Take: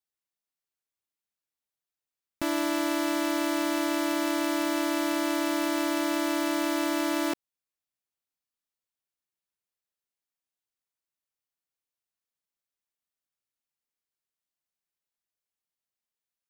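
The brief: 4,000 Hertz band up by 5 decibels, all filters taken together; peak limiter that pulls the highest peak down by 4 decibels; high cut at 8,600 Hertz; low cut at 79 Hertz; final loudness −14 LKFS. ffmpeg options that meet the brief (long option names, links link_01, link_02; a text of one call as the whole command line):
ffmpeg -i in.wav -af "highpass=79,lowpass=8600,equalizer=frequency=4000:width_type=o:gain=6.5,volume=14.5dB,alimiter=limit=-2.5dB:level=0:latency=1" out.wav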